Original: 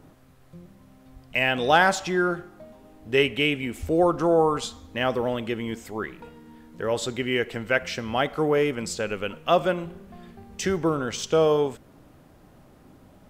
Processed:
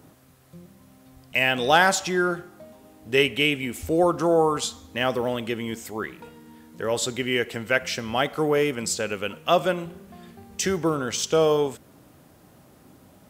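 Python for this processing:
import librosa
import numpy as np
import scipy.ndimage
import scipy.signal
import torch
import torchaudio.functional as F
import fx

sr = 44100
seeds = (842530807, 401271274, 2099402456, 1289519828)

y = scipy.signal.sosfilt(scipy.signal.butter(2, 70.0, 'highpass', fs=sr, output='sos'), x)
y = fx.high_shelf(y, sr, hz=4800.0, db=9.5)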